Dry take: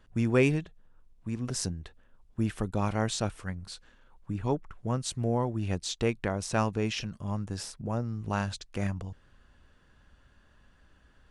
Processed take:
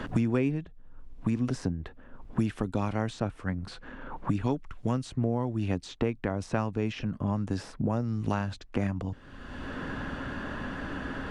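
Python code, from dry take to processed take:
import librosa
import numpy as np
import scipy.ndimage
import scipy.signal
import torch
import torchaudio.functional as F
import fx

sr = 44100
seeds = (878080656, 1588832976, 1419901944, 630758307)

y = fx.lowpass(x, sr, hz=2200.0, slope=6)
y = fx.peak_eq(y, sr, hz=270.0, db=7.5, octaves=0.27)
y = fx.band_squash(y, sr, depth_pct=100)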